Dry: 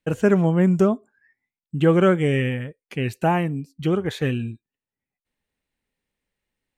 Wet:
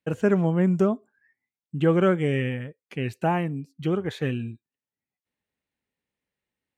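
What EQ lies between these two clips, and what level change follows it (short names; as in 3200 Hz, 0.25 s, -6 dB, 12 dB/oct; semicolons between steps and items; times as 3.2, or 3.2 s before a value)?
HPF 74 Hz; high shelf 5700 Hz -6 dB; -3.5 dB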